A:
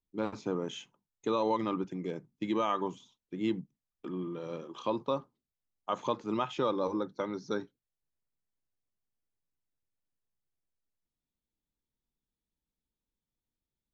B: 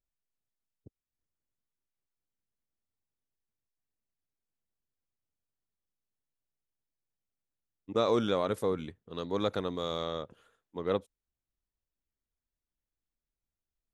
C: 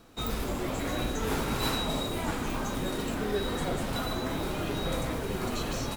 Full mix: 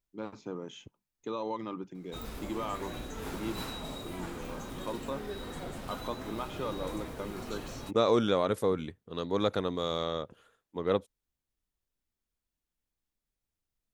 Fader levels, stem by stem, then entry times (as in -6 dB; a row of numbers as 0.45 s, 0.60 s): -6.0 dB, +2.0 dB, -9.5 dB; 0.00 s, 0.00 s, 1.95 s